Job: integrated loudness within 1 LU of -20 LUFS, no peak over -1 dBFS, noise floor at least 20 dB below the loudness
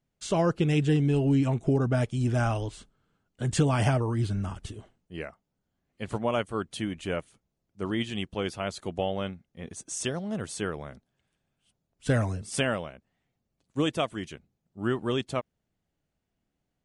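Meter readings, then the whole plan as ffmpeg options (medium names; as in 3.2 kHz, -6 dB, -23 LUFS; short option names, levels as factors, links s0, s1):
loudness -29.0 LUFS; peak level -12.5 dBFS; loudness target -20.0 LUFS
-> -af "volume=2.82"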